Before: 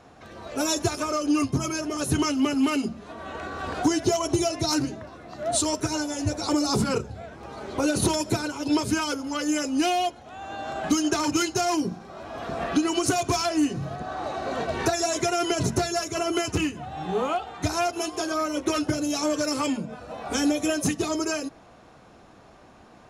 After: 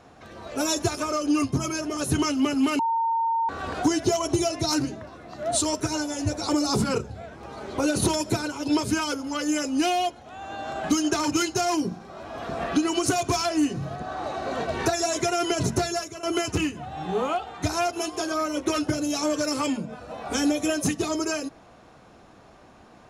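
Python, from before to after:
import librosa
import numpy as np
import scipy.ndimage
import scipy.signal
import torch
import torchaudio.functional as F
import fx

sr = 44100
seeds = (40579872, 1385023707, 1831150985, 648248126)

y = fx.edit(x, sr, fx.bleep(start_s=2.79, length_s=0.7, hz=913.0, db=-21.0),
    fx.fade_out_to(start_s=15.91, length_s=0.32, floor_db=-18.0), tone=tone)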